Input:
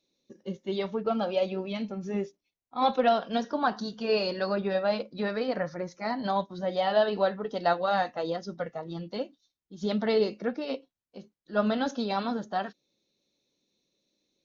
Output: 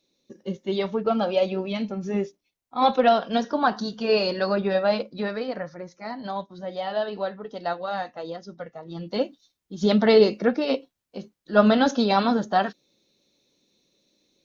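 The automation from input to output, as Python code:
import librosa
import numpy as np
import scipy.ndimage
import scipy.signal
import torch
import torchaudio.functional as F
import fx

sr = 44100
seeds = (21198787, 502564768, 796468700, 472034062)

y = fx.gain(x, sr, db=fx.line((4.98, 5.0), (5.73, -3.0), (8.8, -3.0), (9.22, 9.0)))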